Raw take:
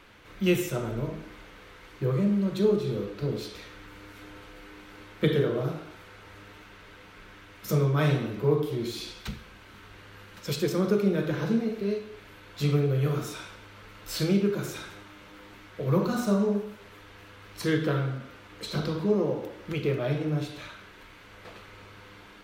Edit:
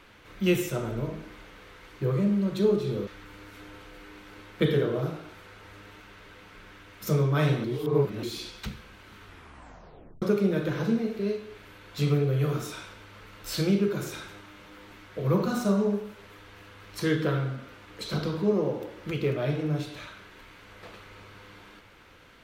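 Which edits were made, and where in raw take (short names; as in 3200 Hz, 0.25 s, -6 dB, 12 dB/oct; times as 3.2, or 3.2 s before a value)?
3.07–3.69 cut
8.26–8.85 reverse
9.87 tape stop 0.97 s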